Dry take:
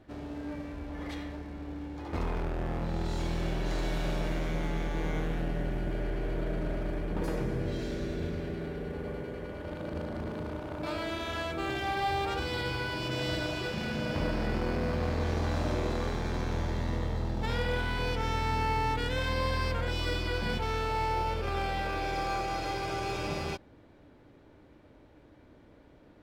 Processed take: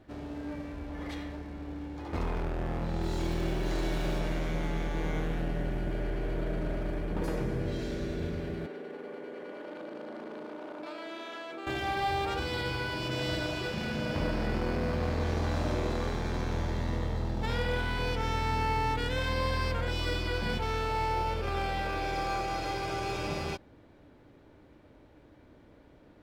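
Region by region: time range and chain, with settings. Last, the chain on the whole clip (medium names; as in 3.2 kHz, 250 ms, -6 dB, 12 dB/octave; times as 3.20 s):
3.01–4.18 s: peaking EQ 350 Hz +7.5 dB 0.21 oct + crackle 580 per s -44 dBFS
8.66–11.67 s: high-pass 250 Hz 24 dB/octave + compression, threshold -37 dBFS + treble shelf 8.2 kHz -10.5 dB
whole clip: none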